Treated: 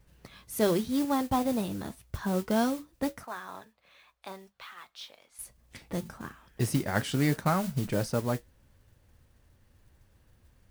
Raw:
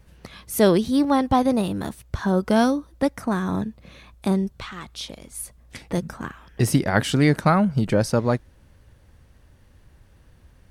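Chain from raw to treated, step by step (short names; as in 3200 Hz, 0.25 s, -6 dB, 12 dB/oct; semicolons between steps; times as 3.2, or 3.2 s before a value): 3.23–5.39 three-band isolator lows -23 dB, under 580 Hz, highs -13 dB, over 5300 Hz; modulation noise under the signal 17 dB; flange 0.25 Hz, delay 6.7 ms, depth 3 ms, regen -69%; gain -4.5 dB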